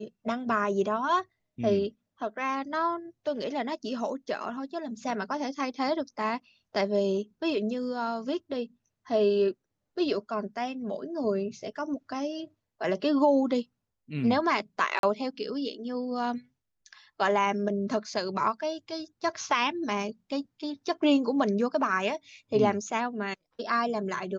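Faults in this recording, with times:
14.99–15.03 s: dropout 42 ms

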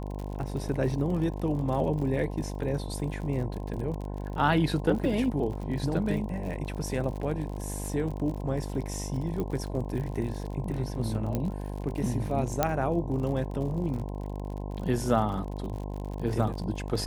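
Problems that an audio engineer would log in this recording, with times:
buzz 50 Hz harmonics 21 -35 dBFS
crackle 54 per s -36 dBFS
5.53 s: dropout 3.7 ms
9.40 s: pop -21 dBFS
11.35 s: pop -16 dBFS
12.63 s: pop -9 dBFS

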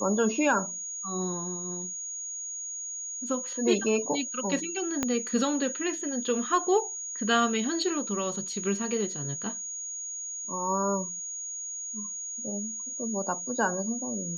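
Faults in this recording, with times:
whine 6.7 kHz -34 dBFS
5.03 s: pop -12 dBFS

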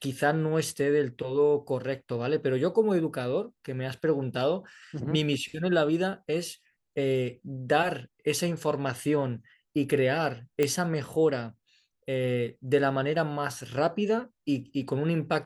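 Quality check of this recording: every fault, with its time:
10.63 s: pop -13 dBFS

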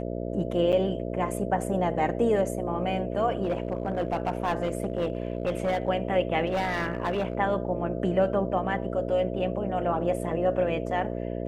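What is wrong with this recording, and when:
buzz 60 Hz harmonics 11 -32 dBFS
0.72–0.73 s: dropout 7.3 ms
3.43–5.89 s: clipped -21.5 dBFS
6.46–7.35 s: clipped -22.5 dBFS

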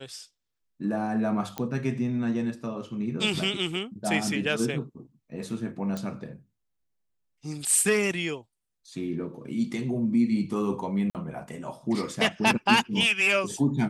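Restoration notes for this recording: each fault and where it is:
1.58 s: pop -15 dBFS
5.97 s: pop
11.10–11.15 s: dropout 48 ms

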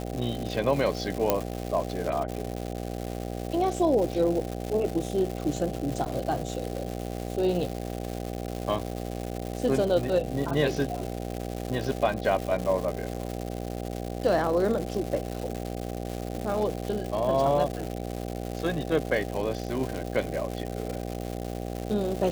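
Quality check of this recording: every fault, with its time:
buzz 60 Hz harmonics 13 -34 dBFS
crackle 340 per s -31 dBFS
1.30 s: pop -7 dBFS
6.05–6.06 s: dropout 8 ms

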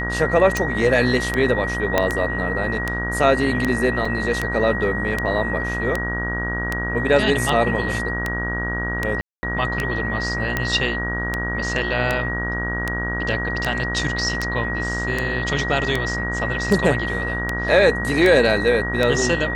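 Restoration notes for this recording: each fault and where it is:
buzz 60 Hz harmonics 33 -27 dBFS
tick 78 rpm
whine 1.9 kHz -25 dBFS
1.98 s: pop -3 dBFS
4.05 s: dropout 4.4 ms
9.21–9.43 s: dropout 220 ms

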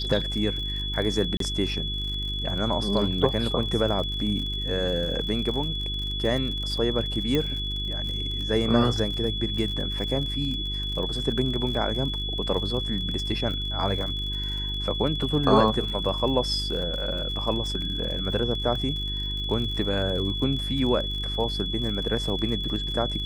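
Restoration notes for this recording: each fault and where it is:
crackle 50 per s -32 dBFS
hum 50 Hz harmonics 8 -32 dBFS
whine 3.4 kHz -30 dBFS
1.37–1.40 s: dropout 33 ms
7.35 s: pop -13 dBFS

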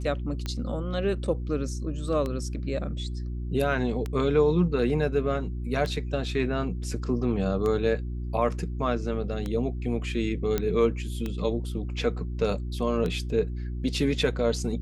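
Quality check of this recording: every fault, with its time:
hum 60 Hz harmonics 6 -32 dBFS
tick 33 1/3 rpm -18 dBFS
10.58 s: pop -12 dBFS

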